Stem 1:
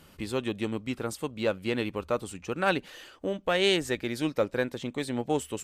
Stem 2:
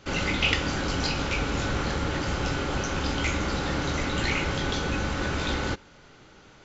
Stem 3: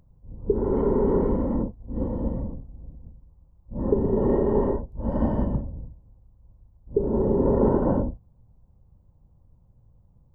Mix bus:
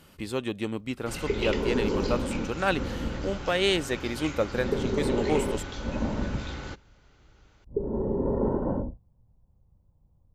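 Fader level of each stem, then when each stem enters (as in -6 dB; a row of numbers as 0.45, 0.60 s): 0.0, -10.5, -6.0 dB; 0.00, 1.00, 0.80 s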